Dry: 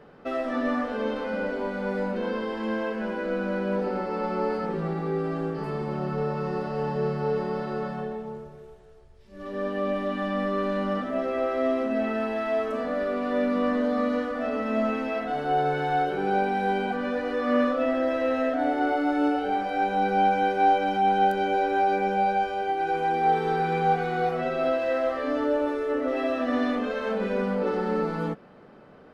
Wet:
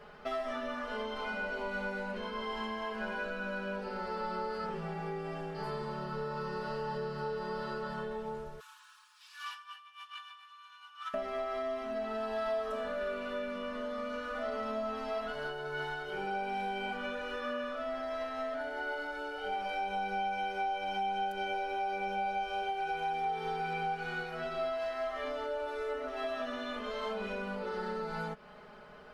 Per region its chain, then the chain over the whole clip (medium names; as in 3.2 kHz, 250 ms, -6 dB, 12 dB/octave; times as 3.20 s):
8.60–11.14 s: peaking EQ 2 kHz -13 dB 0.21 oct + compressor with a negative ratio -35 dBFS, ratio -0.5 + steep high-pass 970 Hz 72 dB/octave
whole clip: compression, threshold -32 dBFS; peaking EQ 260 Hz -14 dB 2.1 oct; comb 4.8 ms, depth 91%; trim +2 dB